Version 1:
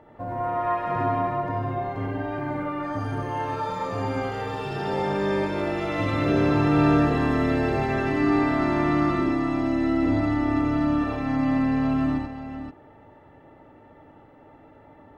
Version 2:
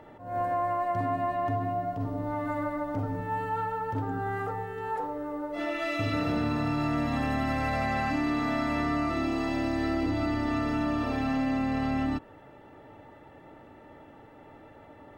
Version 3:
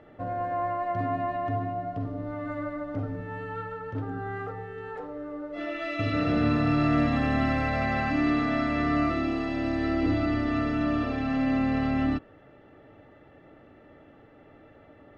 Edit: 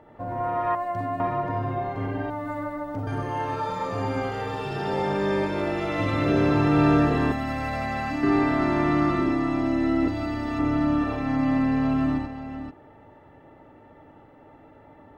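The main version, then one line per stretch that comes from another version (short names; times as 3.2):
1
0.75–1.2 from 2
2.3–3.07 from 2
7.32–8.23 from 2
10.08–10.59 from 2
not used: 3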